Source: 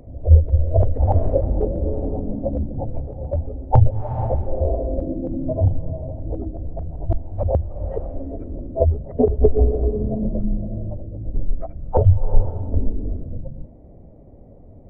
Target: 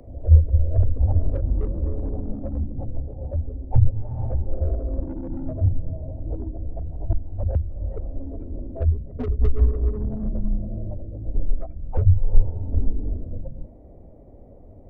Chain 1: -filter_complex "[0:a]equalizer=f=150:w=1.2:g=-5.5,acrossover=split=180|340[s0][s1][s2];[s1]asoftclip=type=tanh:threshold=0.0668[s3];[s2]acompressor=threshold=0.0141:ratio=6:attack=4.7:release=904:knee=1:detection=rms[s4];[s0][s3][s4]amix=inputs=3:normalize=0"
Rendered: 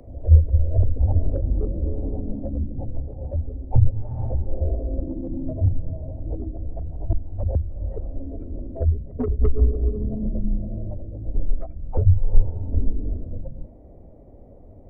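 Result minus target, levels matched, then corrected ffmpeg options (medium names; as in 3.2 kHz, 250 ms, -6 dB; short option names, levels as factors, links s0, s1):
saturation: distortion -8 dB
-filter_complex "[0:a]equalizer=f=150:w=1.2:g=-5.5,acrossover=split=180|340[s0][s1][s2];[s1]asoftclip=type=tanh:threshold=0.0188[s3];[s2]acompressor=threshold=0.0141:ratio=6:attack=4.7:release=904:knee=1:detection=rms[s4];[s0][s3][s4]amix=inputs=3:normalize=0"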